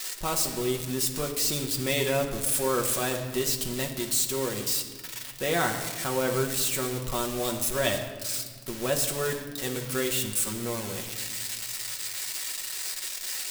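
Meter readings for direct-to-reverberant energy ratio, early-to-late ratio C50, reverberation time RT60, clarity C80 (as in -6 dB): 1.5 dB, 8.0 dB, 1.5 s, 9.5 dB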